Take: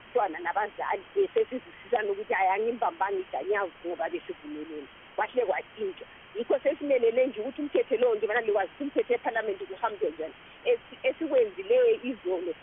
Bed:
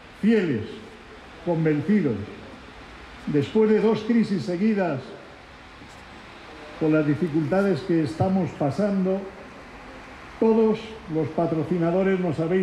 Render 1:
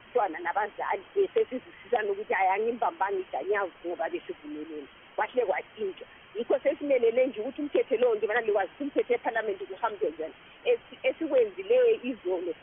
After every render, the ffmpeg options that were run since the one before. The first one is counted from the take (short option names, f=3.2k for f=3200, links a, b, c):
-af "afftdn=nr=6:nf=-51"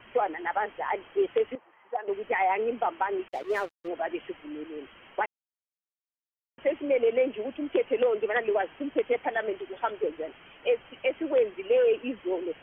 -filter_complex "[0:a]asettb=1/sr,asplit=3[a][b][c];[a]atrim=end=1.554[d];[b]atrim=start=1.55:end=2.08,asetpts=PTS-STARTPTS,afade=t=in:d=0.004:c=qsin,afade=t=out:st=0.526:d=0.004:c=qsin,bandpass=f=880:t=q:w=2.3[e];[c]atrim=start=2.076[f];[d][e]acrossfade=d=0.004:c1=hsin:c2=qsin[g];[g][f]acrossfade=d=0.004:c1=qsin:c2=hsin,asettb=1/sr,asplit=3[h][i][j];[h]atrim=end=3.284[k];[i]atrim=start=3.28:end=3.88,asetpts=PTS-STARTPTS,afade=t=in:d=0.004:c=qsin,afade=t=out:st=0.596:d=0.004:c=qsin,aeval=exprs='sgn(val(0))*max(abs(val(0))-0.00794,0)':c=same[l];[j]atrim=start=3.876[m];[k][l]acrossfade=d=0.004:c1=hsin:c2=qsin[n];[n][m]acrossfade=d=0.004:c1=qsin:c2=hsin,asplit=3[o][p][q];[o]atrim=end=5.26,asetpts=PTS-STARTPTS,afade=t=out:st=5.256:d=0.004:c=hsin[r];[p]atrim=start=5.26:end=6.58,asetpts=PTS-STARTPTS,volume=0[s];[q]atrim=start=6.58,asetpts=PTS-STARTPTS,afade=t=in:d=0.004:c=hsin[t];[r][s][t]concat=n=3:v=0:a=1"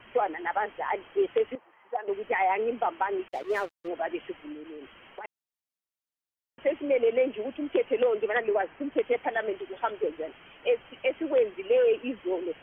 -filter_complex "[0:a]asplit=3[a][b][c];[a]afade=t=out:st=4.52:d=0.02[d];[b]acompressor=threshold=-38dB:ratio=6:attack=3.2:release=140:knee=1:detection=peak,afade=t=in:st=4.52:d=0.02,afade=t=out:st=5.24:d=0.02[e];[c]afade=t=in:st=5.24:d=0.02[f];[d][e][f]amix=inputs=3:normalize=0,asettb=1/sr,asplit=3[g][h][i];[g]atrim=end=8.414[j];[h]atrim=start=8.41:end=8.92,asetpts=PTS-STARTPTS,afade=t=in:d=0.004:c=qsin,afade=t=out:st=0.506:d=0.004:c=qsin,lowpass=f=2.6k:w=0.5412,lowpass=f=2.6k:w=1.3066[k];[i]atrim=start=8.916[l];[j][k]acrossfade=d=0.004:c1=hsin:c2=qsin[m];[m][l]acrossfade=d=0.004:c1=qsin:c2=hsin"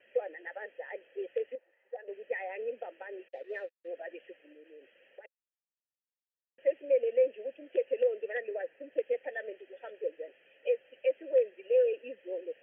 -filter_complex "[0:a]asplit=3[a][b][c];[a]bandpass=f=530:t=q:w=8,volume=0dB[d];[b]bandpass=f=1.84k:t=q:w=8,volume=-6dB[e];[c]bandpass=f=2.48k:t=q:w=8,volume=-9dB[f];[d][e][f]amix=inputs=3:normalize=0"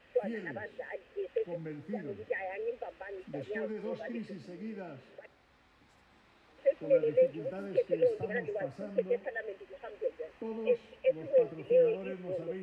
-filter_complex "[1:a]volume=-20.5dB[a];[0:a][a]amix=inputs=2:normalize=0"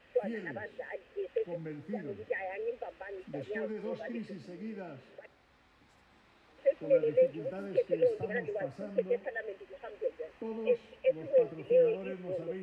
-af anull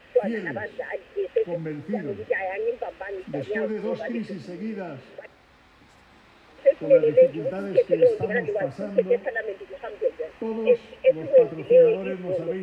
-af "volume=10dB"